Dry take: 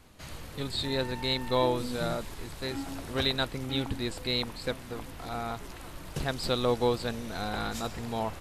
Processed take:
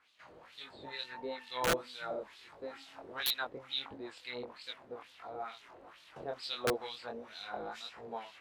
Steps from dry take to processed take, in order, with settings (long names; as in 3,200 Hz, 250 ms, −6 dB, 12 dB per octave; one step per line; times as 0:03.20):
auto-filter band-pass sine 2.2 Hz 450–3,800 Hz
chorus effect 1.5 Hz, delay 19 ms, depth 5.7 ms
wrap-around overflow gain 25.5 dB
level +2 dB